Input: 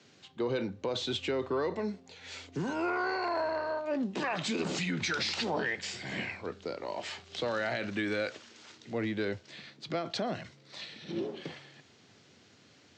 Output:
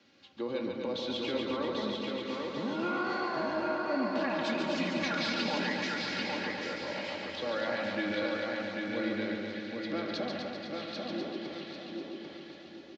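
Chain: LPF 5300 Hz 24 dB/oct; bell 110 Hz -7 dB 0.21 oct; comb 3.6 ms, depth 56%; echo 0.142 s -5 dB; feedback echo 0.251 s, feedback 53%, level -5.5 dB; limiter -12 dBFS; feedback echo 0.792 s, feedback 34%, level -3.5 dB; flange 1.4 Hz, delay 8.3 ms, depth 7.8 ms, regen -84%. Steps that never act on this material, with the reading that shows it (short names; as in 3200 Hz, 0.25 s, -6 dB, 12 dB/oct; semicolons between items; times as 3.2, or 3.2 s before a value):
limiter -12 dBFS: input peak -17.0 dBFS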